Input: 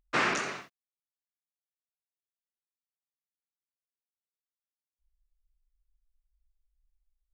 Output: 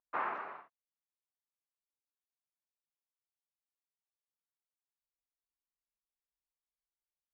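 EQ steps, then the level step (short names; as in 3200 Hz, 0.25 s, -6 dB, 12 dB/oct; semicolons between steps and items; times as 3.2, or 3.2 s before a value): band-pass 950 Hz, Q 2.2; air absorption 410 m; 0.0 dB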